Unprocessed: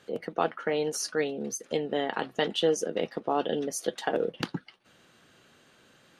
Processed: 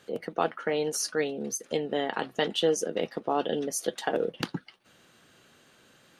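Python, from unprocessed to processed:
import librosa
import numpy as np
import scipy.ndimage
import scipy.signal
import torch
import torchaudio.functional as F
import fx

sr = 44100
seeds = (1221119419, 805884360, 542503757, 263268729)

y = fx.high_shelf(x, sr, hz=8200.0, db=6.0)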